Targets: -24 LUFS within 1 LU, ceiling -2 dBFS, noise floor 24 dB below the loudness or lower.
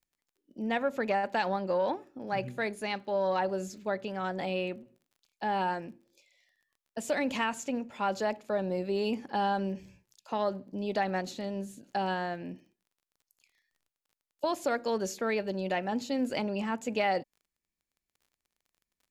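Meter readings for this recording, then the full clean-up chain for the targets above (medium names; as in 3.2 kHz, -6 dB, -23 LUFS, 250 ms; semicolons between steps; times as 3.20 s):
tick rate 22 per s; loudness -32.5 LUFS; peak level -16.5 dBFS; loudness target -24.0 LUFS
-> de-click; trim +8.5 dB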